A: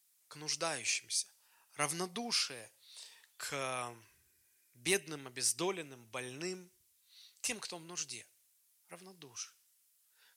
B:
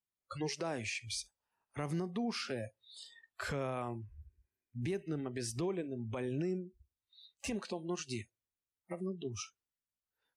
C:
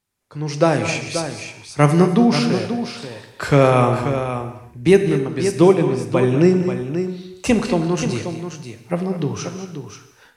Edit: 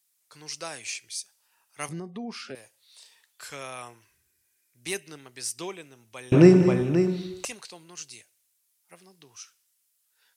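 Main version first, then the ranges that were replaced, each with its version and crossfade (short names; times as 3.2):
A
1.89–2.55 from B
6.32–7.45 from C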